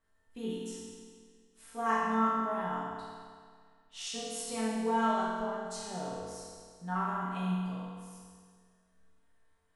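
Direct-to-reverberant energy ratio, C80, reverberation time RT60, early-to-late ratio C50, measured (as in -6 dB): -9.0 dB, 0.0 dB, 1.9 s, -2.0 dB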